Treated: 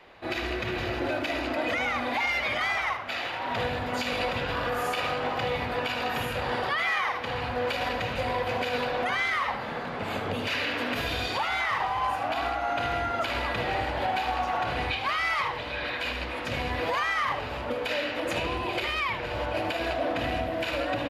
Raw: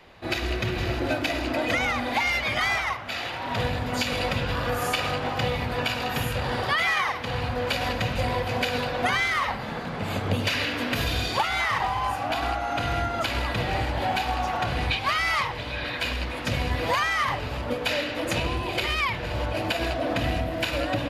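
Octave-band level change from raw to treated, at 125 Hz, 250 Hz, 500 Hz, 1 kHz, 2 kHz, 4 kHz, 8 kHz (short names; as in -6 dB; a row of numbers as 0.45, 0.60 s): -8.0, -4.0, -1.0, -1.0, -2.0, -4.0, -7.5 dB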